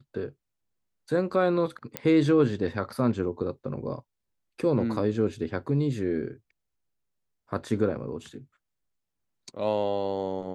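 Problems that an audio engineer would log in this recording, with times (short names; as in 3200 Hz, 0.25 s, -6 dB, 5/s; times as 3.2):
1.97 pop -12 dBFS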